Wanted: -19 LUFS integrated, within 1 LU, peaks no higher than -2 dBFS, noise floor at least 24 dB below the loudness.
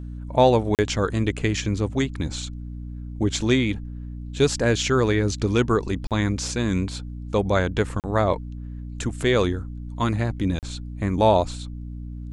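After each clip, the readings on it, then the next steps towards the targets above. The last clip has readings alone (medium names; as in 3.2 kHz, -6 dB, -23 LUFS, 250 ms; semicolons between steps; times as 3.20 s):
dropouts 4; longest dropout 38 ms; hum 60 Hz; highest harmonic 300 Hz; hum level -31 dBFS; loudness -23.5 LUFS; peak level -4.5 dBFS; loudness target -19.0 LUFS
-> interpolate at 0.75/6.07/8.00/10.59 s, 38 ms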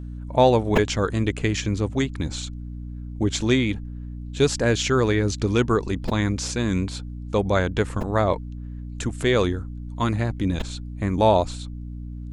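dropouts 0; hum 60 Hz; highest harmonic 300 Hz; hum level -31 dBFS
-> hum notches 60/120/180/240/300 Hz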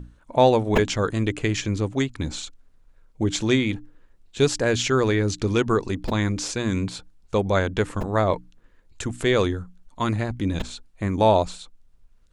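hum not found; loudness -23.5 LUFS; peak level -4.5 dBFS; loudness target -19.0 LUFS
-> trim +4.5 dB; peak limiter -2 dBFS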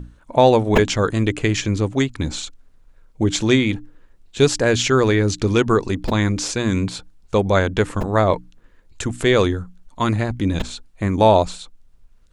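loudness -19.0 LUFS; peak level -2.0 dBFS; noise floor -52 dBFS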